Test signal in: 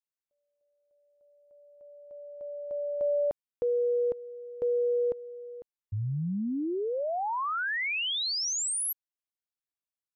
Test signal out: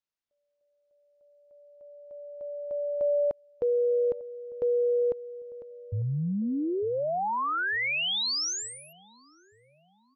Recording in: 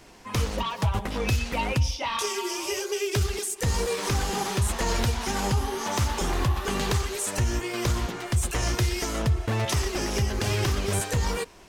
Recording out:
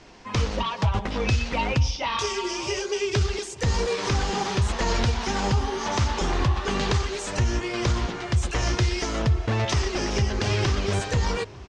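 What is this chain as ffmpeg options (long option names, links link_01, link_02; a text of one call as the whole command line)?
ffmpeg -i in.wav -filter_complex "[0:a]lowpass=frequency=6300:width=0.5412,lowpass=frequency=6300:width=1.3066,asplit=2[link_01][link_02];[link_02]adelay=899,lowpass=frequency=1000:poles=1,volume=-20dB,asplit=2[link_03][link_04];[link_04]adelay=899,lowpass=frequency=1000:poles=1,volume=0.49,asplit=2[link_05][link_06];[link_06]adelay=899,lowpass=frequency=1000:poles=1,volume=0.49,asplit=2[link_07][link_08];[link_08]adelay=899,lowpass=frequency=1000:poles=1,volume=0.49[link_09];[link_03][link_05][link_07][link_09]amix=inputs=4:normalize=0[link_10];[link_01][link_10]amix=inputs=2:normalize=0,volume=2dB" out.wav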